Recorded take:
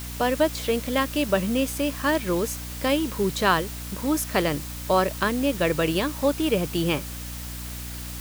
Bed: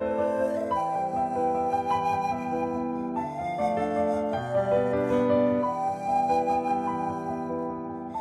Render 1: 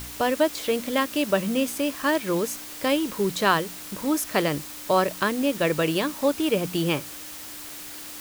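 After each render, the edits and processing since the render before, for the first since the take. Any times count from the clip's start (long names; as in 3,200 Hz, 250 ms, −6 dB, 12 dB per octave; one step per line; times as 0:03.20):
hum removal 60 Hz, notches 4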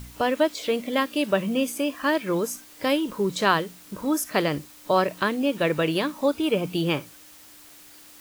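noise reduction from a noise print 10 dB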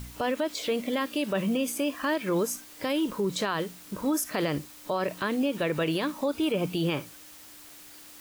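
brickwall limiter −19 dBFS, peak gain reduction 11.5 dB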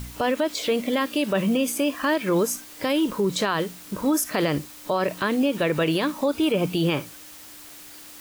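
level +5 dB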